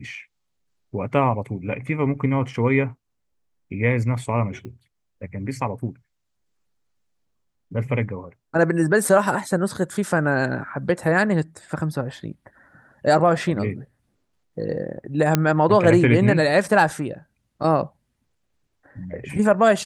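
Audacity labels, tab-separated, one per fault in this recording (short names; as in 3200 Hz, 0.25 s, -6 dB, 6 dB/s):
4.650000	4.650000	pop -26 dBFS
15.350000	15.350000	pop -3 dBFS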